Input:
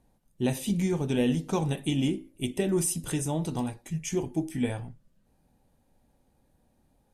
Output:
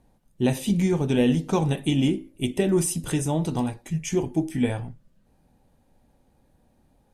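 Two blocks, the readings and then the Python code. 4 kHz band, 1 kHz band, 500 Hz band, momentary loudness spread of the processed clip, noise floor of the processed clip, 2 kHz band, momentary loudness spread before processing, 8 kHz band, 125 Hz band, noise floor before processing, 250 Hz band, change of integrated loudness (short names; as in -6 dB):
+4.0 dB, +5.0 dB, +5.0 dB, 7 LU, -64 dBFS, +4.5 dB, 7 LU, +1.5 dB, +5.0 dB, -69 dBFS, +5.0 dB, +4.5 dB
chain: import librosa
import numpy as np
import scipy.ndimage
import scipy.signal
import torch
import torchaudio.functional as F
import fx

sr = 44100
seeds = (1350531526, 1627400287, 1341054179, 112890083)

y = fx.high_shelf(x, sr, hz=5900.0, db=-5.0)
y = y * 10.0 ** (5.0 / 20.0)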